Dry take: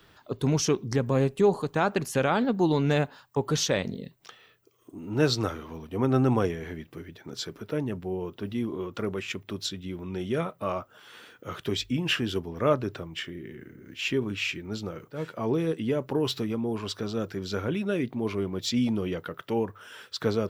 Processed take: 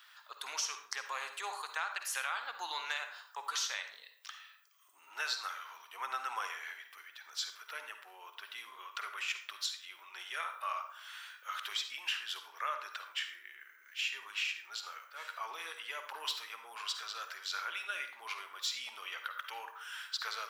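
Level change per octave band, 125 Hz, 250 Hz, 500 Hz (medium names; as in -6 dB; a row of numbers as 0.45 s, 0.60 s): under -40 dB, under -40 dB, -27.5 dB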